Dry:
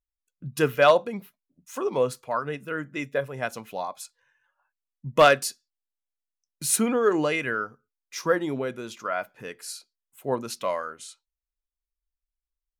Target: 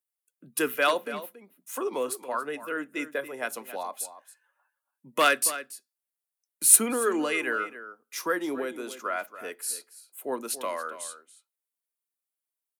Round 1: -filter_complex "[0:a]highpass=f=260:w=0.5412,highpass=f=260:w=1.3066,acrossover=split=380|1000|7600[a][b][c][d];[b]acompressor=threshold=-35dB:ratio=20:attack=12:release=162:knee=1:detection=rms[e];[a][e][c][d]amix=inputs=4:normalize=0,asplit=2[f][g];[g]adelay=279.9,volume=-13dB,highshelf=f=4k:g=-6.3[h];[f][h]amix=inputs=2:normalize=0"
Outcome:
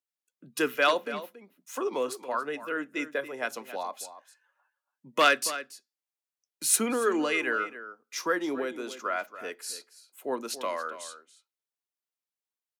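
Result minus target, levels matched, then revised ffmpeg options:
8000 Hz band -5.0 dB
-filter_complex "[0:a]highpass=f=260:w=0.5412,highpass=f=260:w=1.3066,highshelf=f=7.7k:t=q:w=1.5:g=7.5,acrossover=split=380|1000|7600[a][b][c][d];[b]acompressor=threshold=-35dB:ratio=20:attack=12:release=162:knee=1:detection=rms[e];[a][e][c][d]amix=inputs=4:normalize=0,asplit=2[f][g];[g]adelay=279.9,volume=-13dB,highshelf=f=4k:g=-6.3[h];[f][h]amix=inputs=2:normalize=0"

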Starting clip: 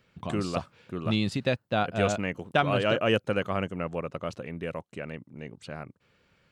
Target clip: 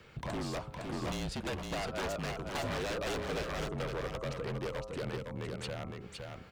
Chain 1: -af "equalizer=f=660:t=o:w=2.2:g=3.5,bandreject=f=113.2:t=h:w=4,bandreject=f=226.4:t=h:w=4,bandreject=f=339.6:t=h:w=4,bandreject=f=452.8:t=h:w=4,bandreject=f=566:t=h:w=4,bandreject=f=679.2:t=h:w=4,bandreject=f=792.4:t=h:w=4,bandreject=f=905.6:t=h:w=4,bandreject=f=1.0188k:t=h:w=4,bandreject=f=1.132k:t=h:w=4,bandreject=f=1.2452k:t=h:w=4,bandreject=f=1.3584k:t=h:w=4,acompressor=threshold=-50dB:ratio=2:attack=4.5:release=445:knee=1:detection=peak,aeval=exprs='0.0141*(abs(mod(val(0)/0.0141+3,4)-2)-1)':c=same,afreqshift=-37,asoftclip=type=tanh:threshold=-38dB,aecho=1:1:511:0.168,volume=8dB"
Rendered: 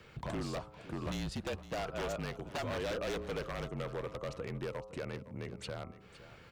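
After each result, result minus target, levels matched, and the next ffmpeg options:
echo-to-direct -11 dB; compressor: peak gain reduction +3 dB
-af "equalizer=f=660:t=o:w=2.2:g=3.5,bandreject=f=113.2:t=h:w=4,bandreject=f=226.4:t=h:w=4,bandreject=f=339.6:t=h:w=4,bandreject=f=452.8:t=h:w=4,bandreject=f=566:t=h:w=4,bandreject=f=679.2:t=h:w=4,bandreject=f=792.4:t=h:w=4,bandreject=f=905.6:t=h:w=4,bandreject=f=1.0188k:t=h:w=4,bandreject=f=1.132k:t=h:w=4,bandreject=f=1.2452k:t=h:w=4,bandreject=f=1.3584k:t=h:w=4,acompressor=threshold=-50dB:ratio=2:attack=4.5:release=445:knee=1:detection=peak,aeval=exprs='0.0141*(abs(mod(val(0)/0.0141+3,4)-2)-1)':c=same,afreqshift=-37,asoftclip=type=tanh:threshold=-38dB,aecho=1:1:511:0.596,volume=8dB"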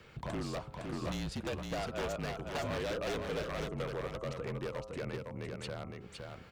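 compressor: peak gain reduction +3 dB
-af "equalizer=f=660:t=o:w=2.2:g=3.5,bandreject=f=113.2:t=h:w=4,bandreject=f=226.4:t=h:w=4,bandreject=f=339.6:t=h:w=4,bandreject=f=452.8:t=h:w=4,bandreject=f=566:t=h:w=4,bandreject=f=679.2:t=h:w=4,bandreject=f=792.4:t=h:w=4,bandreject=f=905.6:t=h:w=4,bandreject=f=1.0188k:t=h:w=4,bandreject=f=1.132k:t=h:w=4,bandreject=f=1.2452k:t=h:w=4,bandreject=f=1.3584k:t=h:w=4,acompressor=threshold=-44dB:ratio=2:attack=4.5:release=445:knee=1:detection=peak,aeval=exprs='0.0141*(abs(mod(val(0)/0.0141+3,4)-2)-1)':c=same,afreqshift=-37,asoftclip=type=tanh:threshold=-38dB,aecho=1:1:511:0.596,volume=8dB"

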